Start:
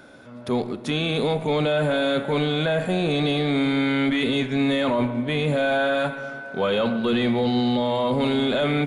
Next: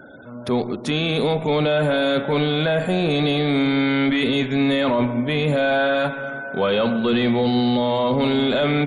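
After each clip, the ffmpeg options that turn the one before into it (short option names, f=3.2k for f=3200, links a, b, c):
-filter_complex "[0:a]afftfilt=real='re*gte(hypot(re,im),0.00447)':imag='im*gte(hypot(re,im),0.00447)':win_size=1024:overlap=0.75,asplit=2[a][b];[b]alimiter=limit=-21.5dB:level=0:latency=1:release=379,volume=-2dB[c];[a][c]amix=inputs=2:normalize=0"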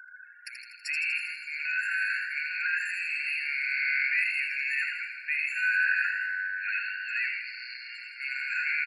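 -filter_complex "[0:a]asuperstop=centerf=750:order=4:qfactor=1.1,asplit=2[a][b];[b]asplit=8[c][d][e][f][g][h][i][j];[c]adelay=81,afreqshift=95,volume=-6dB[k];[d]adelay=162,afreqshift=190,volume=-10.7dB[l];[e]adelay=243,afreqshift=285,volume=-15.5dB[m];[f]adelay=324,afreqshift=380,volume=-20.2dB[n];[g]adelay=405,afreqshift=475,volume=-24.9dB[o];[h]adelay=486,afreqshift=570,volume=-29.7dB[p];[i]adelay=567,afreqshift=665,volume=-34.4dB[q];[j]adelay=648,afreqshift=760,volume=-39.1dB[r];[k][l][m][n][o][p][q][r]amix=inputs=8:normalize=0[s];[a][s]amix=inputs=2:normalize=0,afftfilt=real='re*eq(mod(floor(b*sr/1024/1400),2),1)':imag='im*eq(mod(floor(b*sr/1024/1400),2),1)':win_size=1024:overlap=0.75"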